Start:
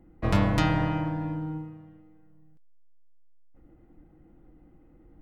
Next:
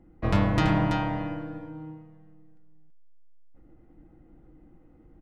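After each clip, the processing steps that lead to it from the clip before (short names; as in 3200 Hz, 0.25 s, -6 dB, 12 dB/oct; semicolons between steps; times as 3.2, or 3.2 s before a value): high shelf 8500 Hz -10.5 dB; echo 0.332 s -5.5 dB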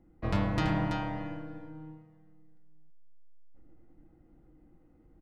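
bell 4500 Hz +2.5 dB 0.36 oct; Schroeder reverb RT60 1.7 s, combs from 26 ms, DRR 17.5 dB; gain -6 dB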